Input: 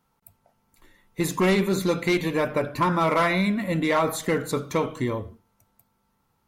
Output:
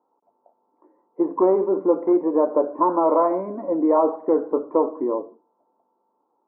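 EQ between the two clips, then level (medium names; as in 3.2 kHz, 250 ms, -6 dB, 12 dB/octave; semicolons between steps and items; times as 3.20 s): elliptic band-pass 300–1000 Hz, stop band 70 dB; distance through air 420 m; +7.5 dB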